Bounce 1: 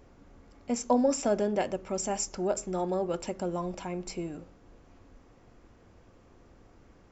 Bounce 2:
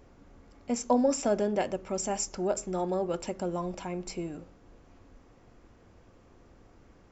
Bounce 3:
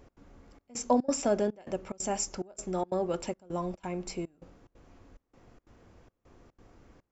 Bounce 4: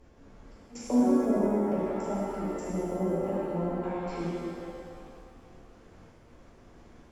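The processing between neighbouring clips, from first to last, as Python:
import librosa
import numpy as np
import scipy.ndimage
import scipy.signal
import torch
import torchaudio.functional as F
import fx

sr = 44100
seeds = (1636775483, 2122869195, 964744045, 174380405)

y1 = x
y2 = fx.step_gate(y1, sr, bpm=180, pattern='x.xxxxx..xx', floor_db=-24.0, edge_ms=4.5)
y3 = fx.env_lowpass_down(y2, sr, base_hz=450.0, full_db=-28.0)
y3 = fx.rev_shimmer(y3, sr, seeds[0], rt60_s=2.2, semitones=7, shimmer_db=-8, drr_db=-8.5)
y3 = y3 * librosa.db_to_amplitude(-5.0)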